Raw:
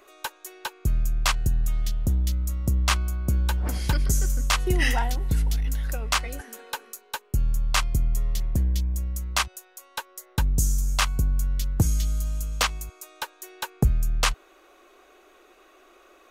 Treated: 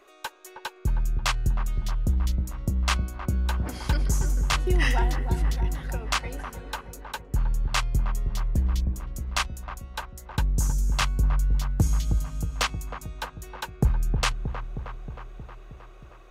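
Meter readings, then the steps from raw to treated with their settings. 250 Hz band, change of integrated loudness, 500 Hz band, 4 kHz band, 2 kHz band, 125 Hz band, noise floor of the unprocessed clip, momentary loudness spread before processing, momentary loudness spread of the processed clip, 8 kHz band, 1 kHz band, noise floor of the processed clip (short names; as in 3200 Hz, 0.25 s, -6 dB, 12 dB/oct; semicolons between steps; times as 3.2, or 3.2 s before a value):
-0.5 dB, -1.5 dB, 0.0 dB, -2.5 dB, -1.5 dB, -1.0 dB, -56 dBFS, 13 LU, 13 LU, -4.5 dB, -0.5 dB, -48 dBFS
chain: high shelf 9400 Hz -9.5 dB; dark delay 0.314 s, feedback 67%, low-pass 1200 Hz, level -7 dB; gain -1.5 dB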